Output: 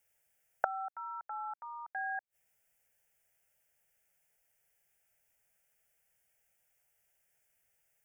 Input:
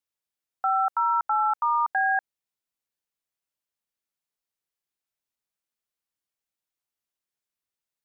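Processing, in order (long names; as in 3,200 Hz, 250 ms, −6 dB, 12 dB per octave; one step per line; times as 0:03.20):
gate with flip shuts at −31 dBFS, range −28 dB
phaser with its sweep stopped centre 1,100 Hz, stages 6
level +15 dB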